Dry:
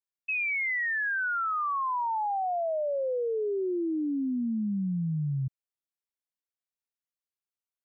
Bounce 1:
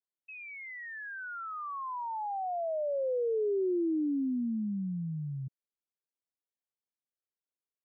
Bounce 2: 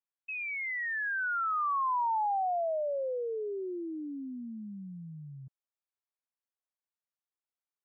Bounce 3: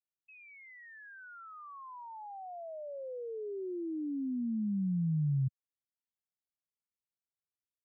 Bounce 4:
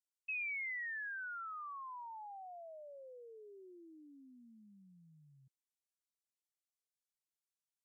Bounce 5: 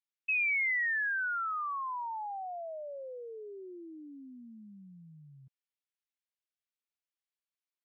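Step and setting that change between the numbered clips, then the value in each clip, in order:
band-pass, frequency: 370, 940, 120, 7800, 2600 Hz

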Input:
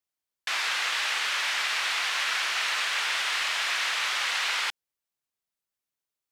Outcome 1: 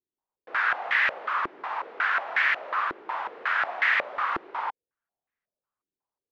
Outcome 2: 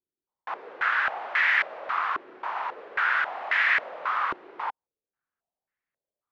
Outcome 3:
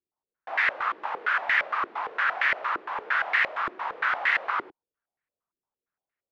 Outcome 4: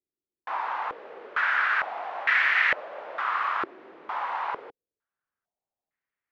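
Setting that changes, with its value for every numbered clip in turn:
stepped low-pass, rate: 5.5, 3.7, 8.7, 2.2 Hz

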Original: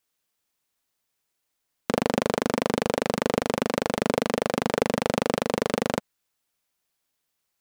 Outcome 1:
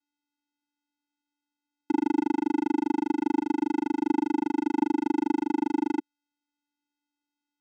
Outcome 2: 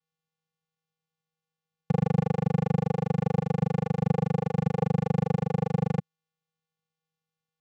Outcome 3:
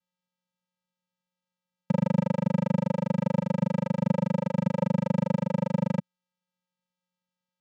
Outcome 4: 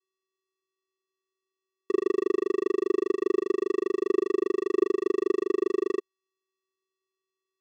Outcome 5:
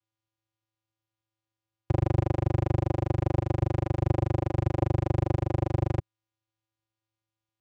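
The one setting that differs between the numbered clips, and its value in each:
vocoder, frequency: 290, 160, 180, 380, 110 Hz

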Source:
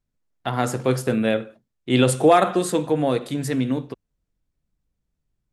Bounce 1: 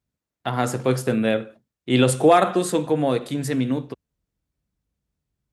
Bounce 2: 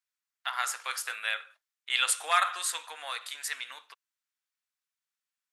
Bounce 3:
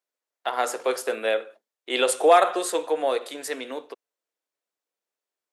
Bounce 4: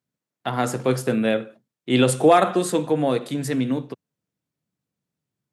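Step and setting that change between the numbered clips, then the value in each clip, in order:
HPF, cutoff: 44, 1200, 440, 120 Hz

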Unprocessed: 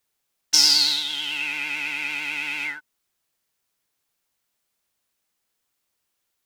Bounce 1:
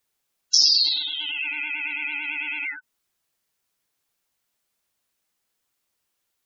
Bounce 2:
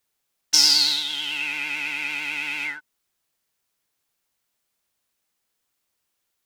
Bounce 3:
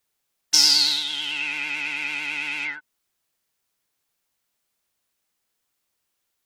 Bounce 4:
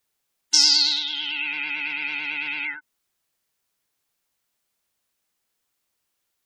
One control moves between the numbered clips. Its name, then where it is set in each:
spectral gate, under each frame's peak: -15, -55, -40, -25 dB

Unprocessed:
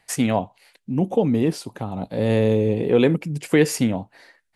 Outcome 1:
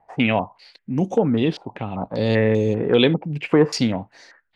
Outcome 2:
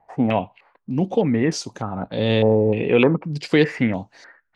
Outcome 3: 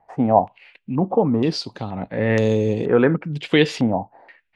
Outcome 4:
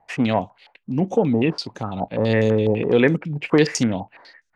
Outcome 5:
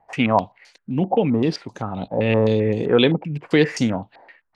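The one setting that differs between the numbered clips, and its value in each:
stepped low-pass, rate: 5.1, 3.3, 2.1, 12, 7.7 Hz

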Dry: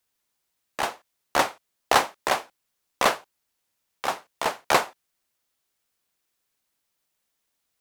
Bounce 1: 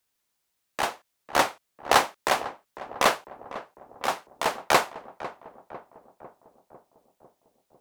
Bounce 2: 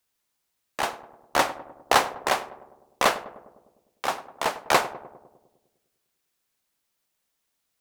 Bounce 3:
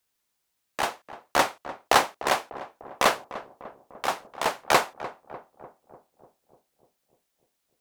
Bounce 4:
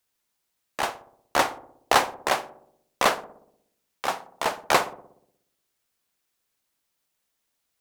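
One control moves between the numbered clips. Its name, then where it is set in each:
darkening echo, time: 500, 101, 298, 60 ms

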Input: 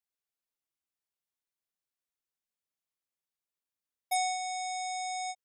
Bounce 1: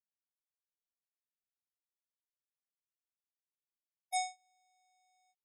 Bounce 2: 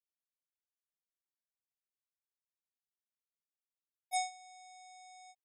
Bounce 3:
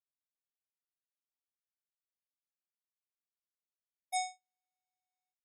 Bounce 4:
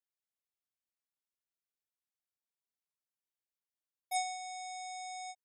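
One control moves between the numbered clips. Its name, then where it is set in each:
gate, range: -39, -20, -60, -8 dB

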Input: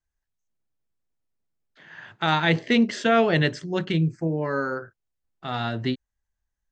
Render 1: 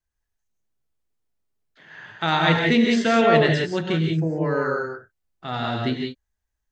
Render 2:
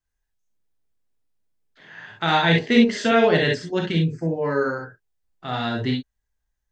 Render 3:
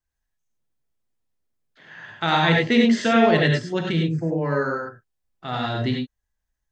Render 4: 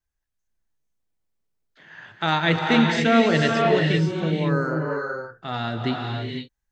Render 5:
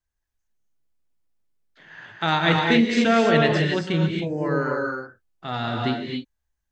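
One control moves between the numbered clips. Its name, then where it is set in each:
non-linear reverb, gate: 200, 80, 120, 540, 300 ms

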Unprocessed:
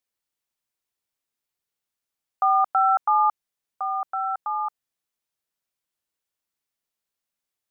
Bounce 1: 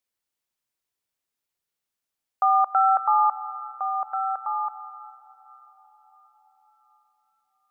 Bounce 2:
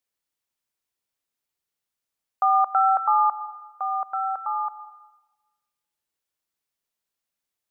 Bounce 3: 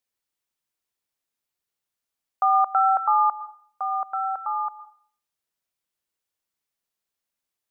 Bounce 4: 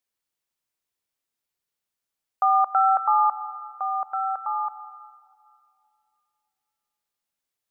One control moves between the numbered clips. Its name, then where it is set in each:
plate-style reverb, RT60: 5.3, 1.2, 0.52, 2.5 s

